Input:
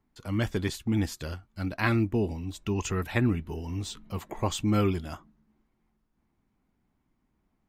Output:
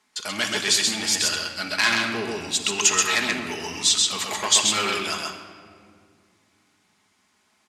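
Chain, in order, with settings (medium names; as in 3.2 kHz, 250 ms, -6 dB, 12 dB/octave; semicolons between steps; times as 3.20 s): vibrato 3.5 Hz 5 cents; in parallel at +0.5 dB: compression, threshold -33 dBFS, peak gain reduction 12.5 dB; on the sum: bass shelf 180 Hz -6 dB; on a send: delay 131 ms -3 dB; on the sum: saturation -22.5 dBFS, distortion -12 dB; frequency weighting ITU-R 468; simulated room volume 3700 m³, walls mixed, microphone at 1.4 m; trim +5 dB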